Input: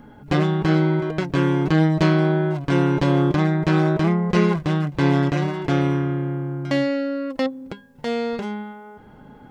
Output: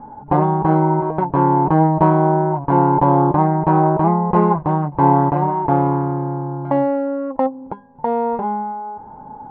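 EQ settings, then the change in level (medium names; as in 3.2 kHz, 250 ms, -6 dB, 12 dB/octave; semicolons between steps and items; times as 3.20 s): resonant low-pass 900 Hz, resonance Q 8.8; +1.0 dB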